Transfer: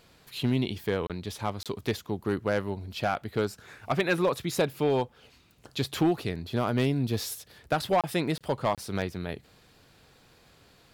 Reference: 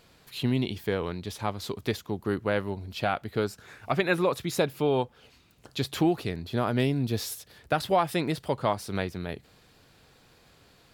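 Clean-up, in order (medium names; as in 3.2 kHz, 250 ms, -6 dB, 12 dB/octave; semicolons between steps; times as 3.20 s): clip repair -17.5 dBFS; interpolate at 1.07/1.63/8.01/8.38/8.75 s, 27 ms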